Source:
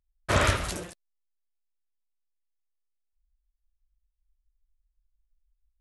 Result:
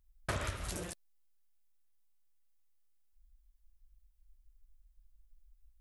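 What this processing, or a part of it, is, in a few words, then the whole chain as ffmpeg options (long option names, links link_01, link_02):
ASMR close-microphone chain: -af "lowshelf=frequency=100:gain=7,acompressor=threshold=-38dB:ratio=10,highshelf=frequency=9700:gain=7.5,volume=3.5dB"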